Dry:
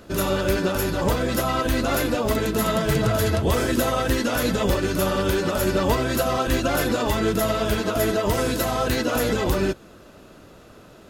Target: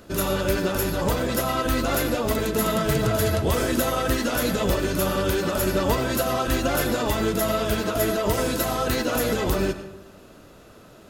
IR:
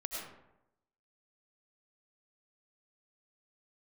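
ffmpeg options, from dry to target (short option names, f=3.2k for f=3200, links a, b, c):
-filter_complex "[0:a]highshelf=f=8.1k:g=4.5,asplit=2[a][b];[1:a]atrim=start_sample=2205[c];[b][c]afir=irnorm=-1:irlink=0,volume=-7.5dB[d];[a][d]amix=inputs=2:normalize=0,volume=-4dB"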